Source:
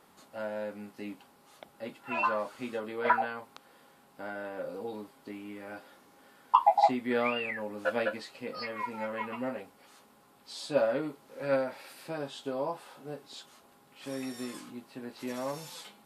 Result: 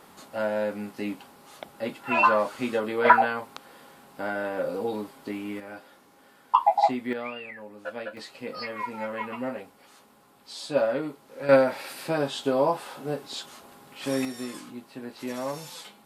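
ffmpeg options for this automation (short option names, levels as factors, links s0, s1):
-af "asetnsamples=n=441:p=0,asendcmd='5.6 volume volume 2dB;7.13 volume volume -5.5dB;8.17 volume volume 3dB;11.49 volume volume 10.5dB;14.25 volume volume 3.5dB',volume=2.82"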